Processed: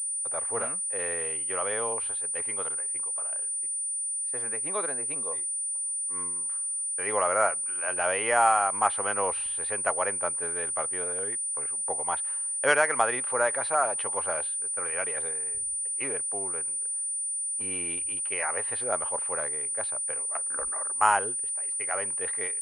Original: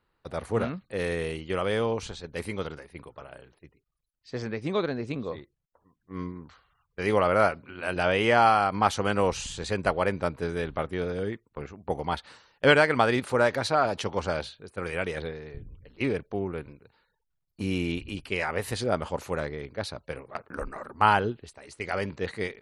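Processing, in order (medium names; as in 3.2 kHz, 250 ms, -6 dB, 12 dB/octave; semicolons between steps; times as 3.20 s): three-band isolator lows -18 dB, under 510 Hz, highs -14 dB, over 2.6 kHz; class-D stage that switches slowly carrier 9.3 kHz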